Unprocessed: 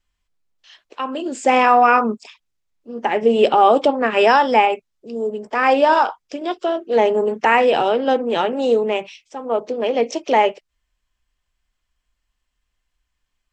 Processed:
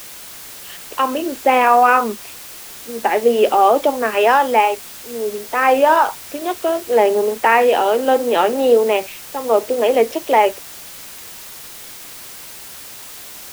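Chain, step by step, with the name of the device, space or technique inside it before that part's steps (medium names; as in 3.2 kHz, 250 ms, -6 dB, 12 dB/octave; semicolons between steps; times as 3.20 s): dictaphone (band-pass 280–3100 Hz; level rider; wow and flutter; white noise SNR 18 dB); trim -1 dB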